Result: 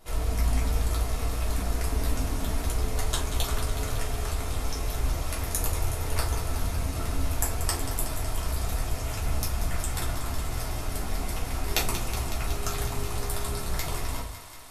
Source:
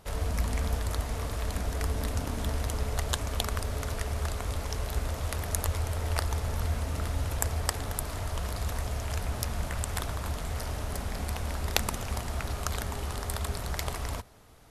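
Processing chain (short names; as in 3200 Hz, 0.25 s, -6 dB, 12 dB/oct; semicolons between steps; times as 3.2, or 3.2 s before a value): high shelf 5600 Hz +6 dB; on a send: thinning echo 0.185 s, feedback 81%, level -11 dB; on the sum: shoebox room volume 170 m³, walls furnished, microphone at 3.2 m; gain -6.5 dB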